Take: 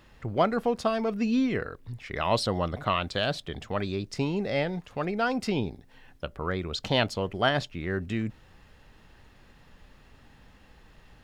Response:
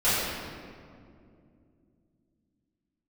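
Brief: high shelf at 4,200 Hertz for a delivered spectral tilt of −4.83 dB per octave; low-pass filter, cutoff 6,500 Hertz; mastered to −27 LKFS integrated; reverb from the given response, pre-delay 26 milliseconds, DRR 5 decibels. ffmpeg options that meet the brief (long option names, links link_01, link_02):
-filter_complex "[0:a]lowpass=6500,highshelf=frequency=4200:gain=-6,asplit=2[link_01][link_02];[1:a]atrim=start_sample=2205,adelay=26[link_03];[link_02][link_03]afir=irnorm=-1:irlink=0,volume=-21dB[link_04];[link_01][link_04]amix=inputs=2:normalize=0,volume=1dB"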